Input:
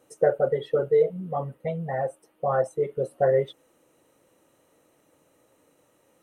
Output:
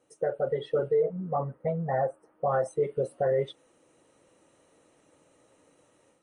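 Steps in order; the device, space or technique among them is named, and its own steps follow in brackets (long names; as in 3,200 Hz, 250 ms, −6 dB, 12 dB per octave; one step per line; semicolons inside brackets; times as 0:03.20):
0:00.94–0:02.48: high shelf with overshoot 2,100 Hz −12.5 dB, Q 1.5
low-bitrate web radio (automatic gain control gain up to 8 dB; brickwall limiter −10.5 dBFS, peak gain reduction 7 dB; level −7 dB; MP3 40 kbit/s 24,000 Hz)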